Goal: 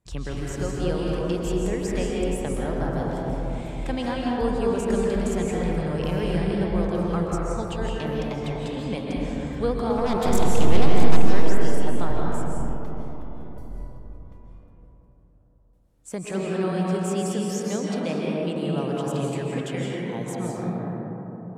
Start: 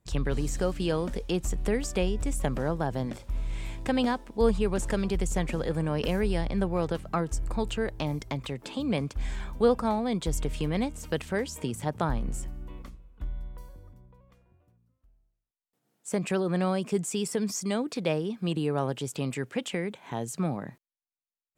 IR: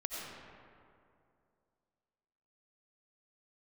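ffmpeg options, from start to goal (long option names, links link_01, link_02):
-filter_complex "[0:a]asplit=3[link_01][link_02][link_03];[link_01]afade=type=out:start_time=9.97:duration=0.02[link_04];[link_02]aeval=exprs='0.178*(cos(1*acos(clip(val(0)/0.178,-1,1)))-cos(1*PI/2))+0.0708*(cos(6*acos(clip(val(0)/0.178,-1,1)))-cos(6*PI/2))':channel_layout=same,afade=type=in:start_time=9.97:duration=0.02,afade=type=out:start_time=11.19:duration=0.02[link_05];[link_03]afade=type=in:start_time=11.19:duration=0.02[link_06];[link_04][link_05][link_06]amix=inputs=3:normalize=0[link_07];[1:a]atrim=start_sample=2205,asetrate=24696,aresample=44100[link_08];[link_07][link_08]afir=irnorm=-1:irlink=0,volume=-3.5dB"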